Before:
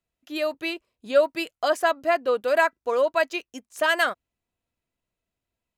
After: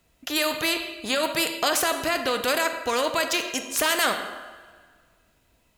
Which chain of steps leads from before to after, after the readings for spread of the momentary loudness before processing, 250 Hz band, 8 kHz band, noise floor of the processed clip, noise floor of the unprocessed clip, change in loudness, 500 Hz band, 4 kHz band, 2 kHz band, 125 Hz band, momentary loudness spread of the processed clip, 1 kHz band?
11 LU, +3.5 dB, +15.0 dB, −65 dBFS, below −85 dBFS, 0.0 dB, −4.5 dB, +8.0 dB, 0.0 dB, can't be measured, 6 LU, −0.5 dB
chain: brickwall limiter −18 dBFS, peak gain reduction 10 dB
coupled-rooms reverb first 0.67 s, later 1.7 s, from −17 dB, DRR 10 dB
every bin compressed towards the loudest bin 2 to 1
level +7 dB

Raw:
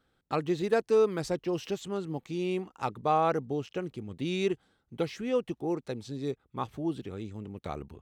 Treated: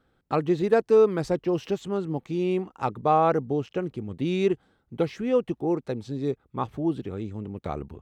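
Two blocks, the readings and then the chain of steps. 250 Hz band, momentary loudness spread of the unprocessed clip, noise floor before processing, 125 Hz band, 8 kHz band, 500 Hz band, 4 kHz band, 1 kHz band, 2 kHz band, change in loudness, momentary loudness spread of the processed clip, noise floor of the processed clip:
+6.0 dB, 14 LU, −75 dBFS, +6.0 dB, can't be measured, +5.5 dB, −0.5 dB, +5.0 dB, +2.5 dB, +5.5 dB, 13 LU, −70 dBFS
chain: high-shelf EQ 2,400 Hz −9.5 dB
level +6 dB

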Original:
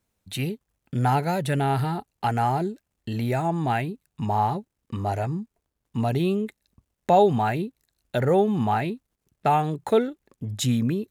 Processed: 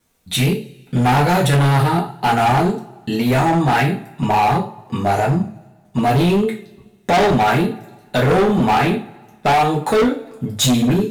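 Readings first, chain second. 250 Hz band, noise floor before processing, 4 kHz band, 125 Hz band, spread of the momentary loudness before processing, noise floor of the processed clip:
+9.0 dB, −81 dBFS, +13.0 dB, +8.5 dB, 14 LU, −51 dBFS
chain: harmonic generator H 5 −20 dB, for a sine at −7.5 dBFS
coupled-rooms reverb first 0.34 s, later 1.6 s, from −26 dB, DRR −5 dB
tape wow and flutter 29 cents
low-shelf EQ 460 Hz −2.5 dB
gain into a clipping stage and back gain 16 dB
level +4.5 dB

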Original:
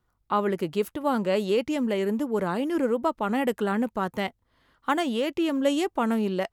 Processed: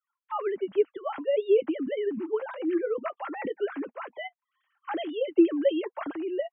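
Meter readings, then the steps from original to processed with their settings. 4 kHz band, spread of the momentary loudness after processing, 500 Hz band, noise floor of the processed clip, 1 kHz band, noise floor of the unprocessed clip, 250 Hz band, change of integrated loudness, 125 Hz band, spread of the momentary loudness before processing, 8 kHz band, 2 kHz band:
−9.0 dB, 13 LU, −0.5 dB, below −85 dBFS, −8.5 dB, −73 dBFS, −4.0 dB, −2.5 dB, below −20 dB, 4 LU, below −35 dB, −7.0 dB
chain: three sine waves on the formant tracks
notch comb filter 240 Hz
level −1.5 dB

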